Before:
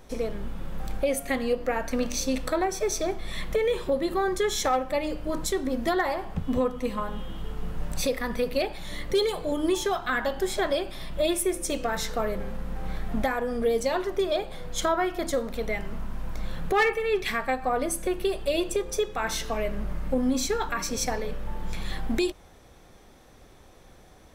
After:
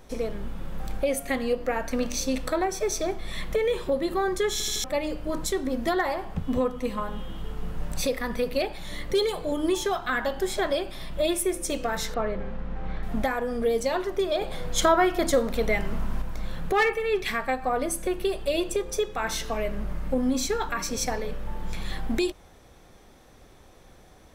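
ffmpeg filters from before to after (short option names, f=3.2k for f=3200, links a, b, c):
-filter_complex "[0:a]asettb=1/sr,asplit=3[a][b][c];[a]atrim=end=12.144[d];[b]atrim=start=12.14:end=13.03,asetpts=PTS-STARTPTS,afade=t=in:d=0.004:c=qsin,afade=t=out:st=0.886:d=0.004:c=qsin,lowpass=3.3k[e];[c]atrim=start=13.026[f];[d][e]acrossfade=d=0.004:c1=hsin:c2=qsin[g];[g][f]acrossfade=d=0.004:c1=qsin:c2=hsin,asettb=1/sr,asplit=3[h][i][j];[h]atrim=end=14.414[k];[i]atrim=start=14.41:end=16.22,asetpts=PTS-STARTPTS,afade=t=in:d=0.004:c=qsin,afade=t=out:st=1.806:d=0.004:c=qsin,acontrast=27[l];[j]atrim=start=16.216[m];[k][l]acrossfade=d=0.004:c1=hsin:c2=qsin[n];[n][m]acrossfade=d=0.004:c1=qsin:c2=hsin,asplit=5[o][p][q][r][s];[o]atrim=end=4.602[t];[p]atrim=start=4.518:end=4.602[u];[q]atrim=start=4.518:end=4.602[v];[r]atrim=start=4.518:end=4.602[w];[s]atrim=start=4.838[x];[t][u]acrossfade=d=0.004:c1=hsin:c2=hsin[y];[y][v]acrossfade=d=0.004:c1=hsin:c2=hsin[z];[z][w]acrossfade=d=0.004:c1=hsin:c2=hsin[aa];[aa][x]acrossfade=d=0.004:c1=hsin:c2=hsin"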